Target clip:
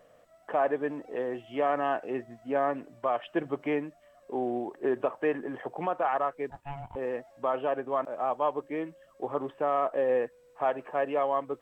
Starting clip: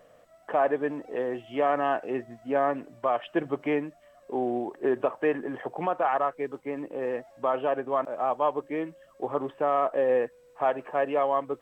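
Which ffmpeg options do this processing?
-filter_complex "[0:a]asettb=1/sr,asplit=3[s0][s1][s2];[s0]atrim=end=6.504[s3];[s1]atrim=start=6.5:end=6.96,asetpts=PTS-STARTPTS,afade=t=in:d=0.004:c=qsin,afade=t=out:st=0.456:d=0.004:c=qsin,aeval=exprs='val(0)*sin(2*PI*420*n/s)':c=same[s4];[s2]atrim=start=6.956[s5];[s3][s4]acrossfade=d=0.004:c1=hsin:c2=qsin[s6];[s6][s5]acrossfade=d=0.004:c1=qsin:c2=hsin,volume=0.75"

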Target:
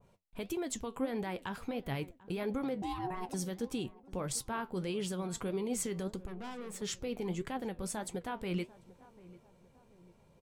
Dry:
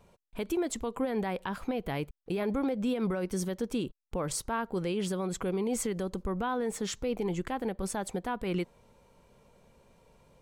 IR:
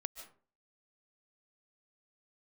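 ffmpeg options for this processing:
-filter_complex "[0:a]equalizer=f=120:w=1.2:g=5,asettb=1/sr,asplit=3[s0][s1][s2];[s0]atrim=end=2.824[s3];[s1]atrim=start=2.82:end=3.34,asetpts=PTS-STARTPTS,afade=t=in:d=0.004:c=qsin,afade=t=out:st=0.516:d=0.004:c=qsin,aeval=exprs='val(0)*sin(2*PI*550*n/s)':c=same[s4];[s2]atrim=start=3.336[s5];[s3][s4]acrossfade=d=0.004:c1=hsin:c2=qsin[s6];[s6][s5]acrossfade=d=0.004:c1=qsin:c2=hsin,asettb=1/sr,asplit=3[s7][s8][s9];[s7]atrim=end=6.264[s10];[s8]atrim=start=6.26:end=6.82,asetpts=PTS-STARTPTS,afade=t=in:d=0.004:c=qsin,afade=t=out:st=0.556:d=0.004:c=qsin,aeval=exprs='(tanh(63.1*val(0)+0.5)-tanh(0.5))/63.1':c=same[s11];[s9]atrim=start=6.816[s12];[s10][s11]acrossfade=d=0.004:c1=hsin:c2=qsin[s13];[s13][s12]acrossfade=d=0.004:c1=qsin:c2=hsin,flanger=delay=7.1:depth=5.4:regen=66:speed=1.6:shape=sinusoidal,asplit=2[s14][s15];[s15]adelay=743,lowpass=f=1200:p=1,volume=0.112,asplit=2[s16][s17];[s17]adelay=743,lowpass=f=1200:p=1,volume=0.48,asplit=2[s18][s19];[s19]adelay=743,lowpass=f=1200:p=1,volume=0.48,asplit=2[s20][s21];[s21]adelay=743,lowpass=f=1200:p=1,volume=0.48[s22];[s14][s16][s18][s20][s22]amix=inputs=5:normalize=0,adynamicequalizer=threshold=0.00158:dfrequency=2000:dqfactor=0.7:tfrequency=2000:tqfactor=0.7:attack=5:release=100:ratio=0.375:range=2:mode=boostabove:tftype=highshelf,volume=0.841"

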